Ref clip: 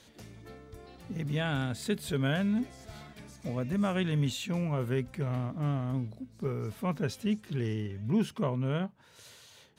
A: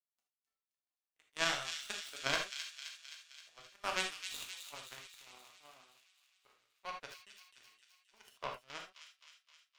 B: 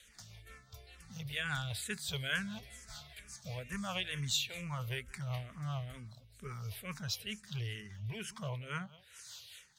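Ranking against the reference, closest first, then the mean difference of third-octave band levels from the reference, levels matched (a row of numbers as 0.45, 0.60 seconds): B, A; 8.0, 15.0 decibels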